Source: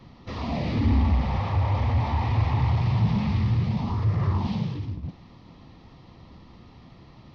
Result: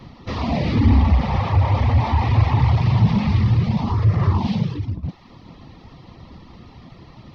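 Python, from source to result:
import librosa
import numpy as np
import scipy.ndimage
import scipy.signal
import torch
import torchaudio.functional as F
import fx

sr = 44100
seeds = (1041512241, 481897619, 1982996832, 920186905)

y = fx.dereverb_blind(x, sr, rt60_s=0.62)
y = y * 10.0 ** (8.0 / 20.0)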